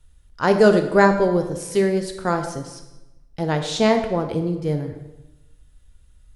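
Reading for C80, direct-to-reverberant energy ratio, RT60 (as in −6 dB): 10.5 dB, 5.5 dB, 1.0 s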